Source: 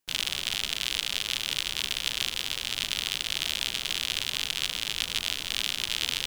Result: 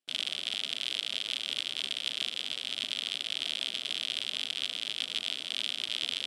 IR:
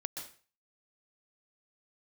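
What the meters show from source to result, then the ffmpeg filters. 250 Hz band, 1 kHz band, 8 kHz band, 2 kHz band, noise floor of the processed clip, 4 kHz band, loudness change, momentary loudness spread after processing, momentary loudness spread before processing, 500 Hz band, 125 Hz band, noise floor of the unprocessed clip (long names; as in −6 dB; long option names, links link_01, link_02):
−6.0 dB, −9.0 dB, −11.0 dB, −6.0 dB, −42 dBFS, −3.0 dB, −4.0 dB, 1 LU, 1 LU, −5.0 dB, below −15 dB, −38 dBFS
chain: -af "highpass=220,equalizer=frequency=250:width_type=q:width=4:gain=6,equalizer=frequency=640:width_type=q:width=4:gain=5,equalizer=frequency=950:width_type=q:width=4:gain=-8,equalizer=frequency=1700:width_type=q:width=4:gain=-3,equalizer=frequency=3300:width_type=q:width=4:gain=6,equalizer=frequency=6500:width_type=q:width=4:gain=-8,lowpass=frequency=9700:width=0.5412,lowpass=frequency=9700:width=1.3066,volume=-6.5dB"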